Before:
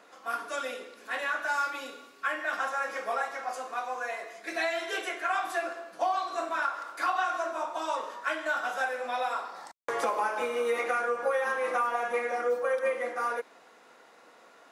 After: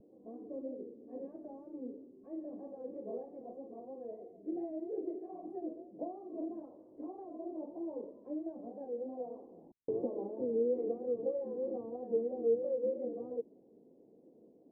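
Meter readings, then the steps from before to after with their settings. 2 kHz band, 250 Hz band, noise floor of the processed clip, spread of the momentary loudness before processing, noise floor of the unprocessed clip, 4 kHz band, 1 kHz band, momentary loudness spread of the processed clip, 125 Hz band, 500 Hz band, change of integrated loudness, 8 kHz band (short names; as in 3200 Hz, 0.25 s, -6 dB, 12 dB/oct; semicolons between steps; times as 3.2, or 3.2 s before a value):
under -40 dB, +5.5 dB, -62 dBFS, 8 LU, -57 dBFS, under -40 dB, -23.5 dB, 15 LU, n/a, -4.5 dB, -8.5 dB, under -35 dB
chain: vibrato 3.1 Hz 99 cents; inverse Chebyshev low-pass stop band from 1300 Hz, stop band 60 dB; gain +6.5 dB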